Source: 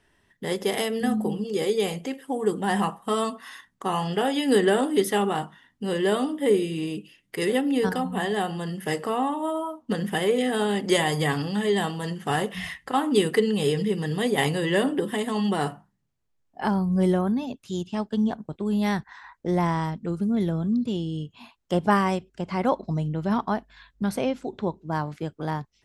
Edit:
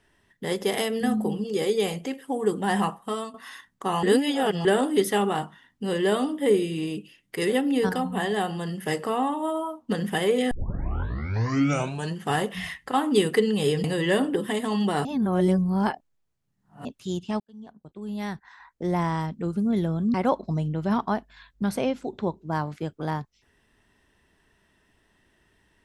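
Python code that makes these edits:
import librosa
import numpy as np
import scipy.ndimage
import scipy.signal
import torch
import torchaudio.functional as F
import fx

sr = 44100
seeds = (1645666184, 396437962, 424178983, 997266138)

y = fx.edit(x, sr, fx.fade_out_to(start_s=2.9, length_s=0.44, floor_db=-13.5),
    fx.reverse_span(start_s=4.03, length_s=0.62),
    fx.tape_start(start_s=10.51, length_s=1.65),
    fx.cut(start_s=13.84, length_s=0.64),
    fx.reverse_span(start_s=15.69, length_s=1.8),
    fx.fade_in_span(start_s=18.04, length_s=1.94),
    fx.cut(start_s=20.78, length_s=1.76), tone=tone)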